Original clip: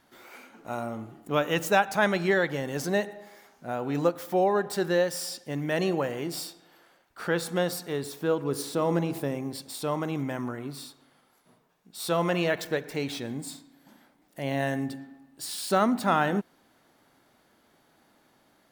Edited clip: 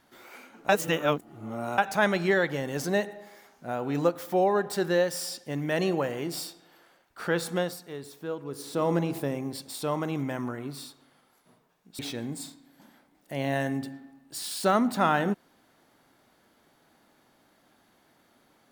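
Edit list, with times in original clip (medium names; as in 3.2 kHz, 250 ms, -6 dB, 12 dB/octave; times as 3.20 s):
0.69–1.78 s: reverse
7.54–8.82 s: dip -8 dB, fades 0.23 s
11.99–13.06 s: delete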